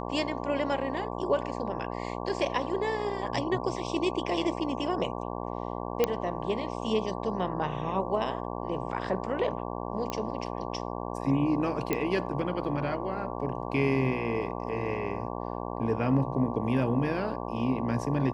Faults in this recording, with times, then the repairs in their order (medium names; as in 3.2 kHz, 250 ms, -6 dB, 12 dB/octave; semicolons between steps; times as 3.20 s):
buzz 60 Hz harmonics 19 -35 dBFS
6.04 s: pop -10 dBFS
10.10 s: pop -18 dBFS
11.93 s: pop -13 dBFS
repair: de-click; de-hum 60 Hz, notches 19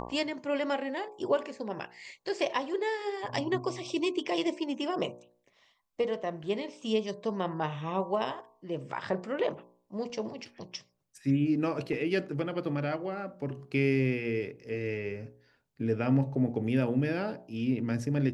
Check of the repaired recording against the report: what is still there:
nothing left